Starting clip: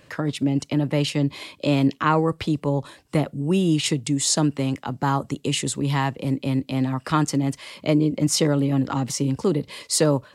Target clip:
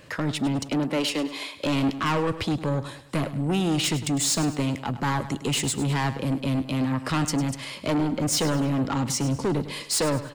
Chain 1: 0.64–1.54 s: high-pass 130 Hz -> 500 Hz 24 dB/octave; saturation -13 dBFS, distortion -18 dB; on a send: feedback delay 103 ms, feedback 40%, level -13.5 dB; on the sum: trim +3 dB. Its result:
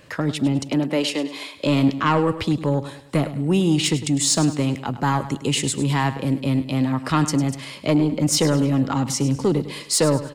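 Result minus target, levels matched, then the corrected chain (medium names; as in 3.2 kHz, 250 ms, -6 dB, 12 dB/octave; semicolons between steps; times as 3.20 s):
saturation: distortion -10 dB
0.64–1.54 s: high-pass 130 Hz -> 500 Hz 24 dB/octave; saturation -23.5 dBFS, distortion -7 dB; on a send: feedback delay 103 ms, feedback 40%, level -13.5 dB; on the sum: trim +3 dB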